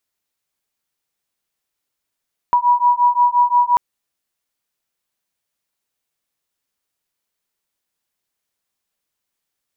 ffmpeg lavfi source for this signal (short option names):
-f lavfi -i "aevalsrc='0.188*(sin(2*PI*969*t)+sin(2*PI*974.7*t))':d=1.24:s=44100"